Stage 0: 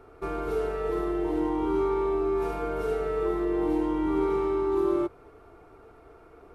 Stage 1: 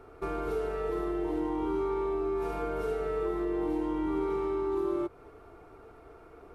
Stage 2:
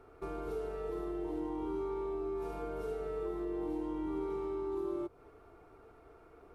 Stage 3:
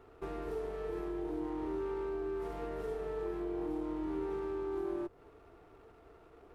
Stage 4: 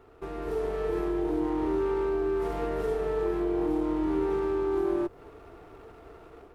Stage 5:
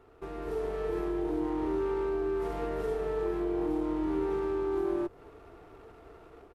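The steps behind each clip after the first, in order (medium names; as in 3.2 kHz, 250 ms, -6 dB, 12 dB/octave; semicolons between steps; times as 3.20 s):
compression 2:1, threshold -31 dBFS, peak gain reduction 6 dB
dynamic bell 1.8 kHz, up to -5 dB, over -50 dBFS, Q 0.94; trim -6 dB
sliding maximum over 9 samples
level rider gain up to 7 dB; trim +2.5 dB
resampled via 32 kHz; trim -3 dB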